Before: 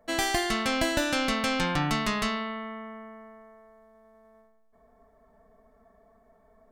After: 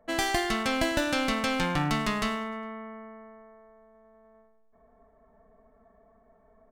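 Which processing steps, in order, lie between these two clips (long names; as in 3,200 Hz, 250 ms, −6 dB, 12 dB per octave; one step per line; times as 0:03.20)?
adaptive Wiener filter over 9 samples
on a send: repeating echo 102 ms, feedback 55%, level −22.5 dB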